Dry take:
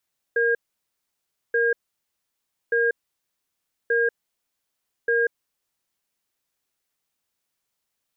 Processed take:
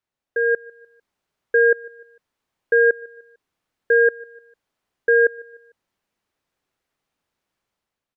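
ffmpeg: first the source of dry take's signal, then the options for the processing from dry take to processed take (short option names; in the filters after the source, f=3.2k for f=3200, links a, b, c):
-f lavfi -i "aevalsrc='0.0944*(sin(2*PI*467*t)+sin(2*PI*1620*t))*clip(min(mod(t,1.18),0.19-mod(t,1.18))/0.005,0,1)':d=5.83:s=44100"
-af "lowpass=f=1.6k:p=1,dynaudnorm=f=150:g=7:m=8dB,aecho=1:1:150|300|450:0.0668|0.0294|0.0129"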